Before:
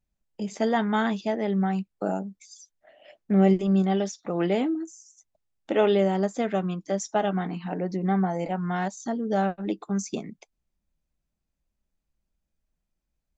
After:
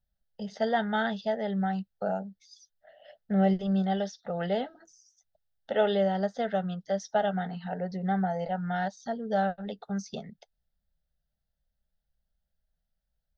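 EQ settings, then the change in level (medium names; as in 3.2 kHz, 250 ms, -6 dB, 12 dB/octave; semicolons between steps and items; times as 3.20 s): static phaser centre 1.6 kHz, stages 8; 0.0 dB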